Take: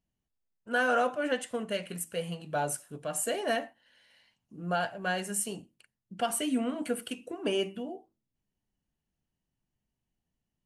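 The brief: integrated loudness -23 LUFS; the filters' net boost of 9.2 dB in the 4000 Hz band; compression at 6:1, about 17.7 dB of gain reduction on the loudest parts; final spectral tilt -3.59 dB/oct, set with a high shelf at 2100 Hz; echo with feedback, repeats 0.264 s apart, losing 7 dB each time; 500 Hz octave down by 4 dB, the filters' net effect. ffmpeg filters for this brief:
-af "equalizer=f=500:t=o:g=-5.5,highshelf=f=2.1k:g=5.5,equalizer=f=4k:t=o:g=9,acompressor=threshold=-42dB:ratio=6,aecho=1:1:264|528|792|1056|1320:0.447|0.201|0.0905|0.0407|0.0183,volume=20.5dB"

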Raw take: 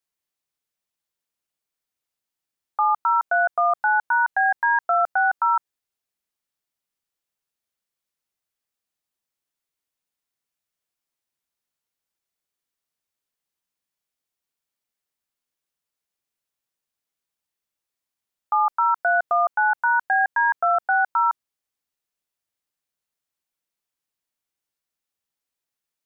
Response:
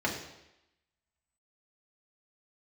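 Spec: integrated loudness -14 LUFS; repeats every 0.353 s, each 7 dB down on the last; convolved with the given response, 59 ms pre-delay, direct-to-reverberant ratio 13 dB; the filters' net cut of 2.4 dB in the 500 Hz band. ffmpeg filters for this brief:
-filter_complex "[0:a]equalizer=f=500:t=o:g=-4.5,aecho=1:1:353|706|1059|1412|1765:0.447|0.201|0.0905|0.0407|0.0183,asplit=2[a][b];[1:a]atrim=start_sample=2205,adelay=59[c];[b][c]afir=irnorm=-1:irlink=0,volume=-22dB[d];[a][d]amix=inputs=2:normalize=0,volume=6.5dB"

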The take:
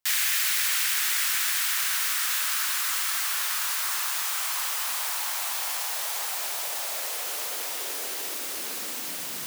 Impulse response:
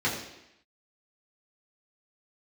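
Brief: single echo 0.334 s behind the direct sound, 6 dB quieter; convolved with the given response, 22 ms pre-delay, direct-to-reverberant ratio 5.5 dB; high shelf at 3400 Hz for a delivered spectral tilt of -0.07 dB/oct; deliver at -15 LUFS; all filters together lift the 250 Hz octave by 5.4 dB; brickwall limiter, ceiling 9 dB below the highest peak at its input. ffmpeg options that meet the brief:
-filter_complex "[0:a]equalizer=f=250:t=o:g=7,highshelf=f=3.4k:g=-6.5,alimiter=level_in=2dB:limit=-24dB:level=0:latency=1,volume=-2dB,aecho=1:1:334:0.501,asplit=2[a][b];[1:a]atrim=start_sample=2205,adelay=22[c];[b][c]afir=irnorm=-1:irlink=0,volume=-17dB[d];[a][d]amix=inputs=2:normalize=0,volume=17dB"

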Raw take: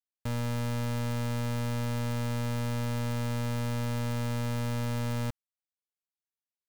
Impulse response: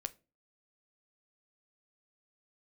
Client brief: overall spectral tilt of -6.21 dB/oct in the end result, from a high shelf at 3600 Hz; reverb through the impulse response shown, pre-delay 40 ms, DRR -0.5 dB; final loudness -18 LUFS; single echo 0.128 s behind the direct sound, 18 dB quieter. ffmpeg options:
-filter_complex "[0:a]highshelf=f=3.6k:g=-6,aecho=1:1:128:0.126,asplit=2[a][b];[1:a]atrim=start_sample=2205,adelay=40[c];[b][c]afir=irnorm=-1:irlink=0,volume=2.5dB[d];[a][d]amix=inputs=2:normalize=0,volume=11dB"

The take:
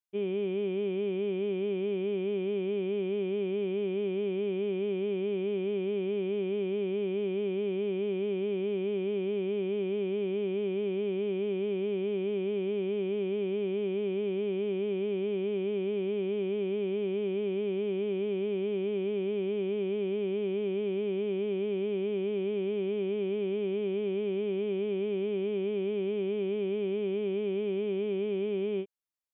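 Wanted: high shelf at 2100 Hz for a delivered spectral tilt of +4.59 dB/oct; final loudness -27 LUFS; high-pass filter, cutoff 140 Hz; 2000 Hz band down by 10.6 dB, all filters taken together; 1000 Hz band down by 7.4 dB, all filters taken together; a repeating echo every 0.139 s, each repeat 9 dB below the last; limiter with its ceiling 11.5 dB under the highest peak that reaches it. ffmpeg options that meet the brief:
-af "highpass=140,equalizer=f=1k:t=o:g=-7.5,equalizer=f=2k:t=o:g=-6,highshelf=f=2.1k:g=-9,alimiter=level_in=13dB:limit=-24dB:level=0:latency=1,volume=-13dB,aecho=1:1:139|278|417|556:0.355|0.124|0.0435|0.0152,volume=15.5dB"

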